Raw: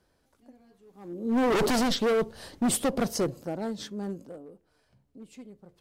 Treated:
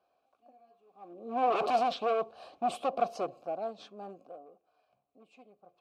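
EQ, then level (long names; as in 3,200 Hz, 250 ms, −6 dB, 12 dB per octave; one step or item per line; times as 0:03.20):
formant filter a
parametric band 4,100 Hz +4 dB 0.33 octaves
+8.0 dB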